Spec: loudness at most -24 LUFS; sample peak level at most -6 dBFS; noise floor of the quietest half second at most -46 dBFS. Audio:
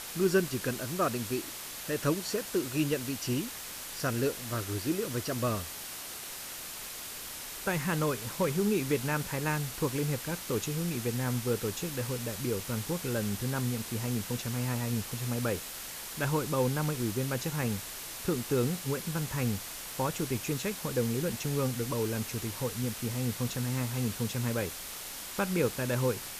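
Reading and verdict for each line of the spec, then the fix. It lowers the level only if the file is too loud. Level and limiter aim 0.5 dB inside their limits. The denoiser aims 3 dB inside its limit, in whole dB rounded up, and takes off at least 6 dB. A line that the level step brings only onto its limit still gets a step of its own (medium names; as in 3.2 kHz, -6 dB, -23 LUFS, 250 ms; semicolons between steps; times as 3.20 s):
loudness -32.5 LUFS: pass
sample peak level -15.0 dBFS: pass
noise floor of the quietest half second -42 dBFS: fail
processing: noise reduction 7 dB, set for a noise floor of -42 dBFS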